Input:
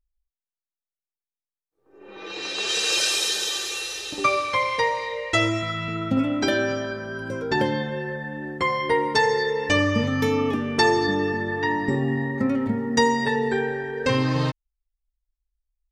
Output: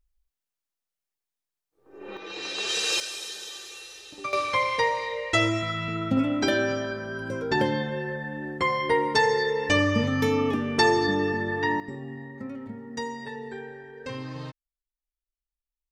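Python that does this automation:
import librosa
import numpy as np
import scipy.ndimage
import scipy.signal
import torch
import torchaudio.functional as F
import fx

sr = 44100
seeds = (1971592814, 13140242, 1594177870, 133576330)

y = fx.gain(x, sr, db=fx.steps((0.0, 4.5), (2.17, -3.0), (3.0, -12.5), (4.33, -1.5), (11.8, -14.0)))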